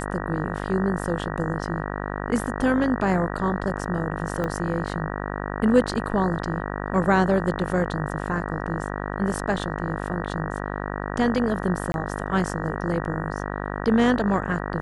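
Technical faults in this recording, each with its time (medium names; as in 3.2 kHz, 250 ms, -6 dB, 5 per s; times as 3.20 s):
buzz 50 Hz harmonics 38 -30 dBFS
4.44 s: pop -15 dBFS
11.92–11.94 s: dropout 21 ms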